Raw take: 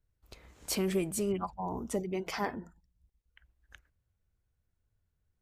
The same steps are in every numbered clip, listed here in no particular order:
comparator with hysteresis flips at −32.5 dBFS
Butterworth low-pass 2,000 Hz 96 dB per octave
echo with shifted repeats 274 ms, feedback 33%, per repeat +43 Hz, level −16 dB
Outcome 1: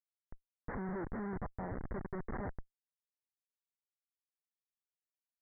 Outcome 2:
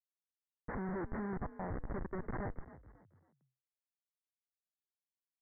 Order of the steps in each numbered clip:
echo with shifted repeats, then comparator with hysteresis, then Butterworth low-pass
comparator with hysteresis, then echo with shifted repeats, then Butterworth low-pass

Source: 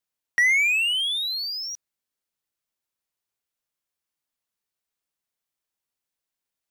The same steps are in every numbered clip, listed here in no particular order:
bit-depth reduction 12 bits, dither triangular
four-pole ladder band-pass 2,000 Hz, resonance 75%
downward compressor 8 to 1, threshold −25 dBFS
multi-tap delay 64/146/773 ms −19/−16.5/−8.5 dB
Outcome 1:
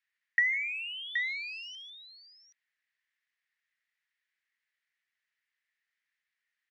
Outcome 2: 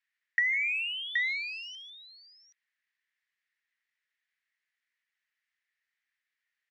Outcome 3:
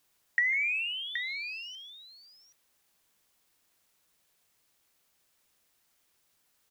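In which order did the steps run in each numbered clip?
multi-tap delay, then bit-depth reduction, then downward compressor, then four-pole ladder band-pass
multi-tap delay, then bit-depth reduction, then four-pole ladder band-pass, then downward compressor
four-pole ladder band-pass, then downward compressor, then multi-tap delay, then bit-depth reduction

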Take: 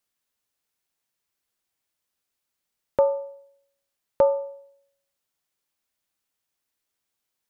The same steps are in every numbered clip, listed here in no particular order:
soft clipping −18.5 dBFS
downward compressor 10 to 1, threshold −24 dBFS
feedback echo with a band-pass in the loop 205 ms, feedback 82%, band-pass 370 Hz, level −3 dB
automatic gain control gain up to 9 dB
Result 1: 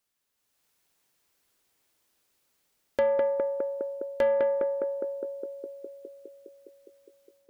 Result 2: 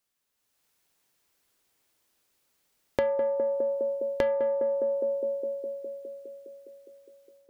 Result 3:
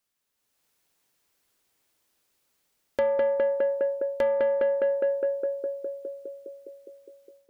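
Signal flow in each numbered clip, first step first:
downward compressor, then automatic gain control, then feedback echo with a band-pass in the loop, then soft clipping
soft clipping, then automatic gain control, then feedback echo with a band-pass in the loop, then downward compressor
feedback echo with a band-pass in the loop, then downward compressor, then automatic gain control, then soft clipping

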